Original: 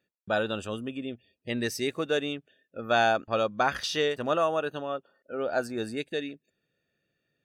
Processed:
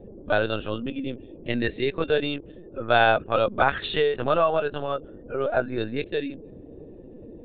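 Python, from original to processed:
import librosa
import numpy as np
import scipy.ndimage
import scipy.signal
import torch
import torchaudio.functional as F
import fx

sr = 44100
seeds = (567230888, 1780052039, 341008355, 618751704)

y = fx.dmg_noise_band(x, sr, seeds[0], low_hz=140.0, high_hz=480.0, level_db=-48.0)
y = fx.lpc_vocoder(y, sr, seeds[1], excitation='pitch_kept', order=16)
y = F.gain(torch.from_numpy(y), 4.5).numpy()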